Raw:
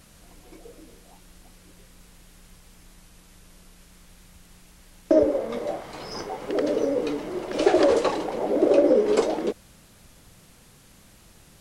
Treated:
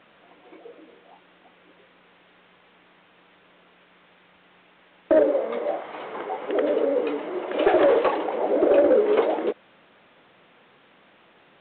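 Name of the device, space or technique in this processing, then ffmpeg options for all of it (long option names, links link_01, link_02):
telephone: -af "highpass=370,lowpass=3000,asoftclip=type=tanh:threshold=-13.5dB,volume=4dB" -ar 8000 -c:a pcm_alaw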